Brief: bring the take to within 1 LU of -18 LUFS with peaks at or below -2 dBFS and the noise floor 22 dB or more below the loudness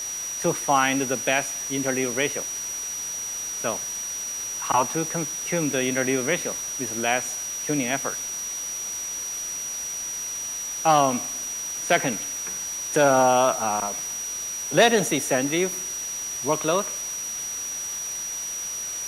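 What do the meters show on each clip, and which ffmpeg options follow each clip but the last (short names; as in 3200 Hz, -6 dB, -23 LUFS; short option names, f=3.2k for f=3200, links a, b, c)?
steady tone 5800 Hz; tone level -29 dBFS; noise floor -32 dBFS; noise floor target -47 dBFS; loudness -24.5 LUFS; peak -6.5 dBFS; loudness target -18.0 LUFS
-> -af "bandreject=f=5.8k:w=30"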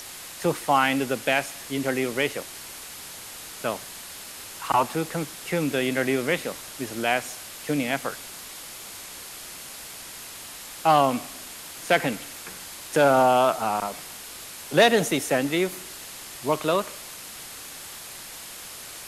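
steady tone none; noise floor -40 dBFS; noise floor target -47 dBFS
-> -af "afftdn=nr=7:nf=-40"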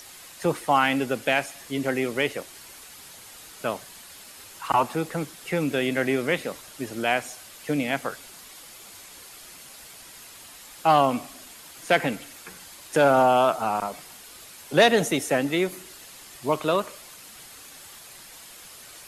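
noise floor -46 dBFS; noise floor target -47 dBFS
-> -af "afftdn=nr=6:nf=-46"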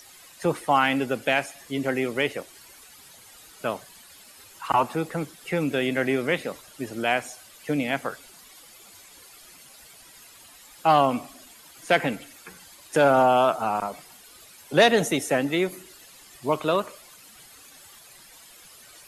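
noise floor -50 dBFS; loudness -24.5 LUFS; peak -7.0 dBFS; loudness target -18.0 LUFS
-> -af "volume=6.5dB,alimiter=limit=-2dB:level=0:latency=1"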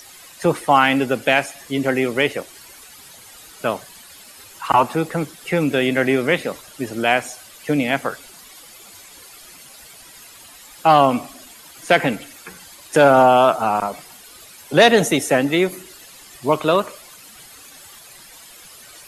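loudness -18.0 LUFS; peak -2.0 dBFS; noise floor -44 dBFS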